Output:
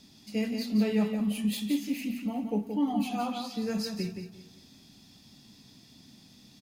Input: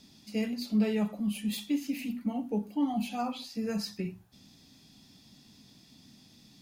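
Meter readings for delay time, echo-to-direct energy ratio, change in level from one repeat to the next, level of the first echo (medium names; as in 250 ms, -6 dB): 174 ms, -6.0 dB, no regular repeats, -6.5 dB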